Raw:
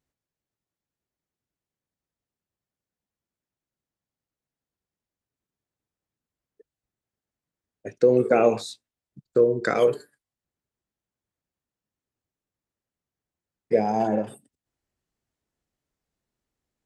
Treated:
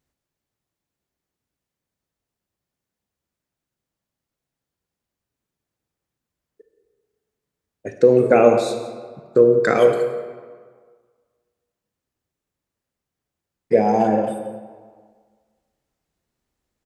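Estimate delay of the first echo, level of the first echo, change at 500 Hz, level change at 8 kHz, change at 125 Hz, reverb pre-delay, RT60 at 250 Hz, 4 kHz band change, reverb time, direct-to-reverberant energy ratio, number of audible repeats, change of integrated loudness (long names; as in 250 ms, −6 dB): 172 ms, −16.5 dB, +6.0 dB, can't be measured, +5.5 dB, 30 ms, 1.7 s, +3.5 dB, 1.7 s, 6.5 dB, 1, +5.5 dB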